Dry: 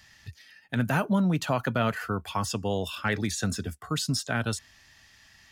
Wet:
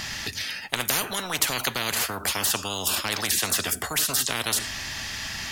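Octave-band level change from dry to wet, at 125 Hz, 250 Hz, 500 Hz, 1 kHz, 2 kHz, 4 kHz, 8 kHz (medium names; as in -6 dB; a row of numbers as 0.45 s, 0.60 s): -9.5 dB, -9.0 dB, -3.0 dB, +0.5 dB, +5.0 dB, +10.5 dB, +12.5 dB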